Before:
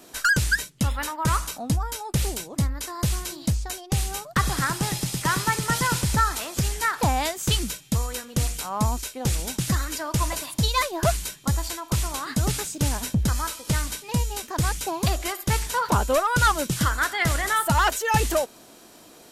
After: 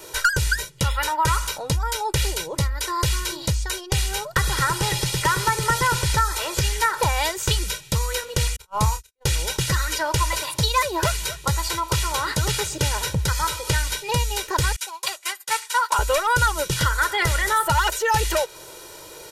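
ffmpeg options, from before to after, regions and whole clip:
ffmpeg -i in.wav -filter_complex "[0:a]asettb=1/sr,asplit=3[link_01][link_02][link_03];[link_01]atrim=end=8.564[link_04];[link_02]atrim=start=8.56:end=9.26,asetpts=PTS-STARTPTS,afade=type=in:duration=0.004:curve=qsin,afade=type=out:start_time=0.696:duration=0.004:curve=qsin,agate=range=-56dB:threshold=-28dB:ratio=16:release=100:detection=peak,lowshelf=frequency=200:gain=9.5,asplit=2[link_05][link_06];[link_06]adelay=28,volume=-9dB[link_07];[link_05][link_07]amix=inputs=2:normalize=0,atrim=end_sample=30870[link_08];[link_03]atrim=start=9.256[link_09];[link_04][link_08]acrossfade=duration=0.004:curve1=hsin:curve2=qsin[link_10];[link_10][link_09]acrossfade=duration=0.004:curve1=qsin:curve2=hsin,asettb=1/sr,asplit=3[link_11][link_12][link_13];[link_11]atrim=end=10.404[link_14];[link_12]atrim=start=10.4:end=13.71,asetpts=PTS-STARTPTS,afade=type=in:duration=0.004:curve=qsin,afade=type=out:start_time=3.306:duration=0.004:curve=qsin,highpass=65,asoftclip=type=hard:threshold=-14.5dB,aecho=1:1:248:0.075,atrim=end_sample=145971[link_15];[link_13]atrim=start=13.706[link_16];[link_14][link_15]acrossfade=duration=0.004:curve1=hsin:curve2=qsin[link_17];[link_17][link_16]acrossfade=duration=0.004:curve1=qsin:curve2=hsin,asettb=1/sr,asplit=3[link_18][link_19][link_20];[link_18]atrim=end=14.764[link_21];[link_19]atrim=start=14.76:end=15.99,asetpts=PTS-STARTPTS,afade=type=in:duration=0.004:curve=qsin,afade=type=out:start_time=1.226:duration=0.004:curve=qsin,highpass=1000,equalizer=frequency=8600:width_type=o:width=0.65:gain=4,agate=range=-33dB:threshold=-26dB:ratio=3:release=100:detection=peak[link_22];[link_20]atrim=start=15.986[link_23];[link_21][link_22]acrossfade=duration=0.004:curve1=hsin:curve2=qsin[link_24];[link_24][link_23]acrossfade=duration=0.004:curve1=qsin:curve2=hsin,equalizer=frequency=240:width=2.9:gain=-11.5,aecho=1:1:2.1:0.82,acrossover=split=1200|5100[link_25][link_26][link_27];[link_25]acompressor=threshold=-29dB:ratio=4[link_28];[link_26]acompressor=threshold=-31dB:ratio=4[link_29];[link_27]acompressor=threshold=-39dB:ratio=4[link_30];[link_28][link_29][link_30]amix=inputs=3:normalize=0,volume=7dB" out.wav

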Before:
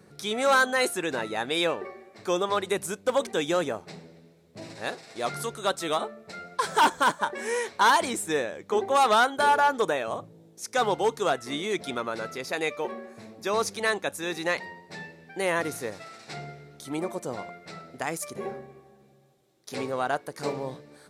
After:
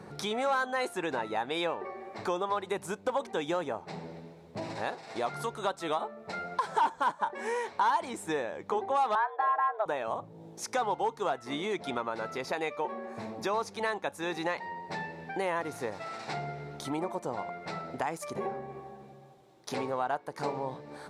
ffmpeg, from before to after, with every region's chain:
ffmpeg -i in.wav -filter_complex "[0:a]asettb=1/sr,asplit=3[link_01][link_02][link_03];[link_01]atrim=end=9.154[link_04];[link_02]atrim=start=9.15:end=9.86,asetpts=PTS-STARTPTS,afade=type=in:duration=0.004:curve=qsin,afade=type=out:start_time=0.706:duration=0.004:curve=qsin,lowpass=1700,afreqshift=200[link_05];[link_03]atrim=start=9.856[link_06];[link_04][link_05]acrossfade=duration=0.004:curve1=hsin:curve2=qsin[link_07];[link_07][link_06]acrossfade=duration=0.004:curve1=qsin:curve2=hsin,lowpass=frequency=3600:poles=1,equalizer=frequency=890:width=2.2:gain=9,acompressor=threshold=-42dB:ratio=2.5,volume=6.5dB" out.wav

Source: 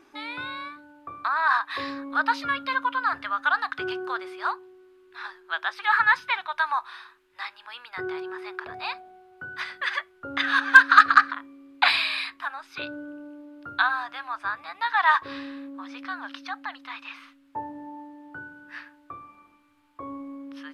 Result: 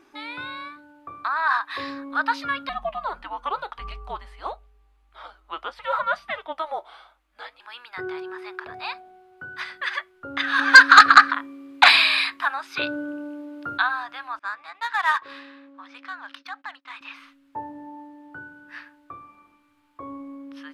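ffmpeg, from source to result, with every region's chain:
ffmpeg -i in.wav -filter_complex "[0:a]asettb=1/sr,asplit=3[link_01][link_02][link_03];[link_01]atrim=end=2.694[link_04];[link_02]atrim=start=2.69:end=7.6,asetpts=PTS-STARTPTS,afade=type=in:duration=0.004:curve=qsin,afade=type=out:start_time=4.906:duration=0.004:curve=qsin,flanger=delay=3.1:depth=1.4:regen=74:speed=1.6:shape=sinusoidal,afreqshift=-320[link_05];[link_03]atrim=start=7.596[link_06];[link_04][link_05]acrossfade=duration=0.004:curve1=hsin:curve2=qsin[link_07];[link_07][link_06]acrossfade=duration=0.004:curve1=qsin:curve2=hsin,asettb=1/sr,asplit=3[link_08][link_09][link_10];[link_08]atrim=end=10.594[link_11];[link_09]atrim=start=10.59:end=13.78,asetpts=PTS-STARTPTS,afade=type=in:duration=0.004:curve=qsin,afade=type=out:start_time=3.186:duration=0.004:curve=qsin,aeval=exprs='0.794*sin(PI/2*1.58*val(0)/0.794)':channel_layout=same,highpass=41,lowshelf=frequency=74:gain=-10[link_12];[link_10]atrim=start=13.776[link_13];[link_11][link_12]acrossfade=duration=0.004:curve1=hsin:curve2=qsin[link_14];[link_14][link_13]acrossfade=duration=0.004:curve1=qsin:curve2=hsin,asettb=1/sr,asplit=3[link_15][link_16][link_17];[link_15]atrim=end=14.394[link_18];[link_16]atrim=start=14.39:end=17.01,asetpts=PTS-STARTPTS,afade=type=in:duration=0.004:curve=qsin,afade=type=out:start_time=2.616:duration=0.004:curve=qsin,highpass=frequency=870:poles=1,agate=range=-20dB:threshold=-53dB:ratio=16:release=100:detection=peak,adynamicsmooth=sensitivity=6:basefreq=4500[link_19];[link_17]atrim=start=17.006[link_20];[link_18][link_19]acrossfade=duration=0.004:curve1=hsin:curve2=qsin[link_21];[link_21][link_20]acrossfade=duration=0.004:curve1=qsin:curve2=hsin" out.wav

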